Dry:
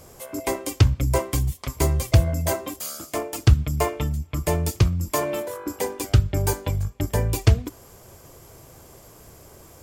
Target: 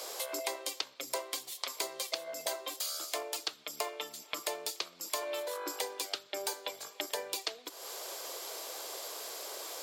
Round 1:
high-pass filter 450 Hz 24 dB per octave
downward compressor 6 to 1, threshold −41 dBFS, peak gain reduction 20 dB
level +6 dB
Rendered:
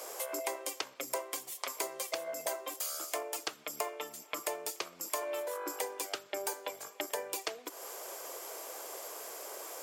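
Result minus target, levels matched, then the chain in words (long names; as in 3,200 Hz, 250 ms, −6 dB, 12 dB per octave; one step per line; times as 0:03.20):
4,000 Hz band −5.0 dB
high-pass filter 450 Hz 24 dB per octave
parametric band 4,000 Hz +12 dB 0.8 octaves
downward compressor 6 to 1, threshold −41 dBFS, peak gain reduction 22.5 dB
level +6 dB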